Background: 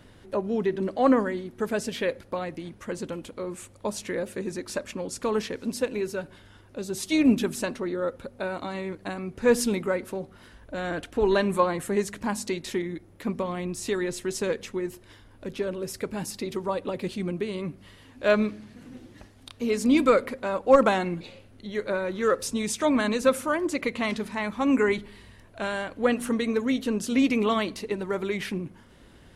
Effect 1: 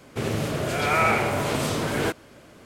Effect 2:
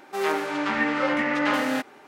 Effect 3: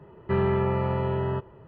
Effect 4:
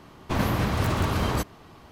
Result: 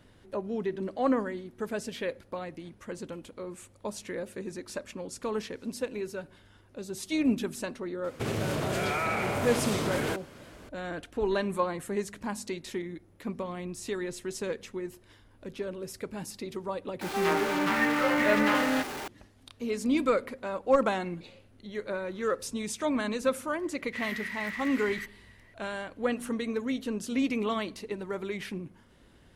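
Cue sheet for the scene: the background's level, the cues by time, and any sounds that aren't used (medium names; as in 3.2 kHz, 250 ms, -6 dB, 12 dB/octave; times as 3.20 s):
background -6 dB
8.04 s: add 1 -1 dB + compression, threshold -25 dBFS
17.01 s: add 2 -3.5 dB + jump at every zero crossing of -29.5 dBFS
23.63 s: add 4 -1.5 dB + ladder high-pass 1.9 kHz, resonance 90%
not used: 3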